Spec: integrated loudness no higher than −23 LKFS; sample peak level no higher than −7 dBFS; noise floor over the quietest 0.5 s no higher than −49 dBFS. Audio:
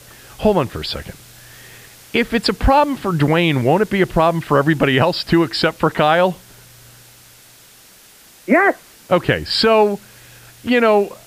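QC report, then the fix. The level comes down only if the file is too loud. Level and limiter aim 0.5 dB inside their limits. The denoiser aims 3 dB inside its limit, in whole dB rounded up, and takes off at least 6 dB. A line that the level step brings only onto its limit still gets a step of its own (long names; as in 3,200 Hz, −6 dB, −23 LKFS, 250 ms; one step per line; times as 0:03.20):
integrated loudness −16.5 LKFS: out of spec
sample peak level −3.5 dBFS: out of spec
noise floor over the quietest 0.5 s −46 dBFS: out of spec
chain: level −7 dB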